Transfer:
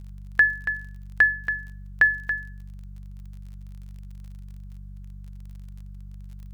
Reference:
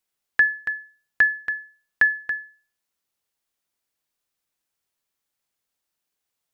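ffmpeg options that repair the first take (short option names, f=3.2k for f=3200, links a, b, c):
-af "adeclick=t=4,bandreject=f=48.4:t=h:w=4,bandreject=f=96.8:t=h:w=4,bandreject=f=145.2:t=h:w=4,bandreject=f=193.6:t=h:w=4,agate=range=-21dB:threshold=-32dB"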